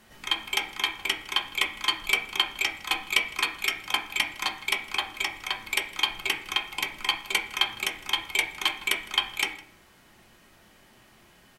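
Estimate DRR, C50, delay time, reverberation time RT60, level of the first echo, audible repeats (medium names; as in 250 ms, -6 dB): 2.0 dB, 10.5 dB, 159 ms, 0.55 s, -21.5 dB, 1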